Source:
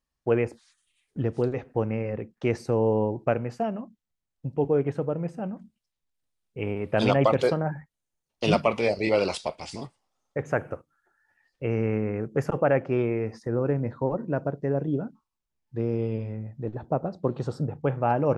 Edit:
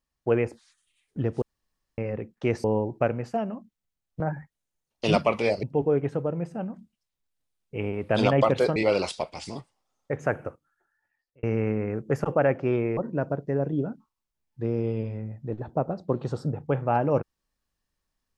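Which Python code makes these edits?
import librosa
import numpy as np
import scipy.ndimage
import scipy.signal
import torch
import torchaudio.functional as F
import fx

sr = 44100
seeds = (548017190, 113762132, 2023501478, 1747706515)

y = fx.edit(x, sr, fx.room_tone_fill(start_s=1.42, length_s=0.56),
    fx.cut(start_s=2.64, length_s=0.26),
    fx.move(start_s=7.59, length_s=1.43, to_s=4.46),
    fx.fade_out_span(start_s=10.68, length_s=1.01),
    fx.cut(start_s=13.23, length_s=0.89), tone=tone)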